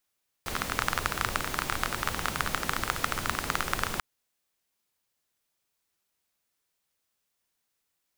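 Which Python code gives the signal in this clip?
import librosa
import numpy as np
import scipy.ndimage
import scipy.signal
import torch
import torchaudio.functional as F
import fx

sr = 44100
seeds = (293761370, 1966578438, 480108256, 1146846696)

y = fx.rain(sr, seeds[0], length_s=3.54, drops_per_s=21.0, hz=1300.0, bed_db=-1.5)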